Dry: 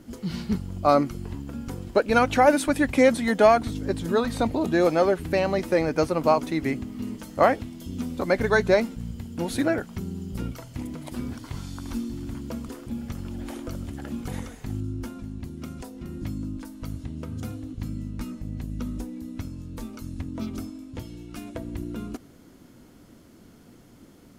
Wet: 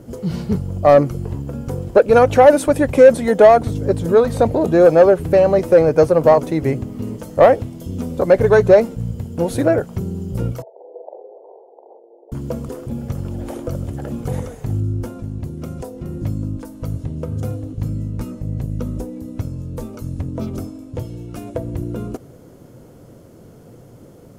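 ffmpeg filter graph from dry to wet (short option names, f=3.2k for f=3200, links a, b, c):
-filter_complex "[0:a]asettb=1/sr,asplit=3[a][b][c];[a]atrim=end=10.624[d];[b]atrim=start=10.62:end=12.32,asetpts=PTS-STARTPTS,afade=t=in:d=0.004:c=qsin,afade=t=out:st=1.696:d=0.004:c=qsin,acompressor=threshold=-33dB:ratio=6:attack=3.2:release=140:knee=1:detection=peak,asuperpass=centerf=580:order=12:qfactor=1.2,asplit=2[e][f];[f]adelay=44,volume=-3.5dB[g];[e][g]amix=inputs=2:normalize=0,atrim=end_sample=74970[h];[c]atrim=start=12.316[i];[d][h]acrossfade=d=0.004:c1=hsin:c2=qsin[j];[j][i]acrossfade=d=0.004:c1=qsin:c2=hsin,equalizer=f=125:t=o:w=1:g=10,equalizer=f=250:t=o:w=1:g=-5,equalizer=f=500:t=o:w=1:g=11,equalizer=f=2k:t=o:w=1:g=-4,equalizer=f=4k:t=o:w=1:g=-5,acontrast=40,volume=-1dB"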